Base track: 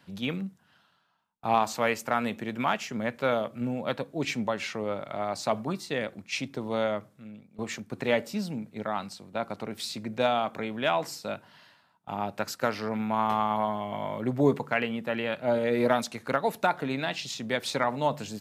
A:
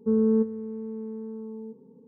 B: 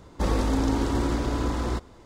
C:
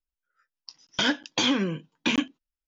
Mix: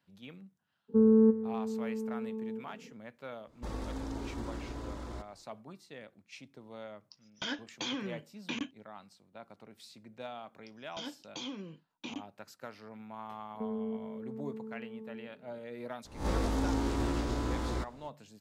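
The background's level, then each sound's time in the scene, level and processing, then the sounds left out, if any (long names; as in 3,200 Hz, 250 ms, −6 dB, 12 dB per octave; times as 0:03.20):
base track −18 dB
0:00.88: mix in A −0.5 dB, fades 0.02 s
0:03.43: mix in B −15 dB, fades 0.10 s
0:06.43: mix in C −13 dB
0:09.98: mix in C −17 dB + parametric band 1,700 Hz −11.5 dB 0.57 octaves
0:13.54: mix in A −7.5 dB + downward compressor, threshold −26 dBFS
0:16.05: mix in B −8 dB + peak hold with a rise ahead of every peak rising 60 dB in 0.39 s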